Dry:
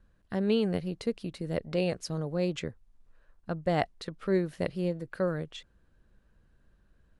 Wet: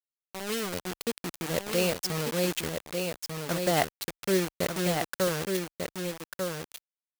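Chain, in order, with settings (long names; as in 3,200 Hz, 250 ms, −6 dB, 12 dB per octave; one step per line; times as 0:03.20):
fade in at the beginning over 1.49 s
bit reduction 6 bits
spectral tilt +1.5 dB per octave
single-tap delay 1,194 ms −5 dB
level +3 dB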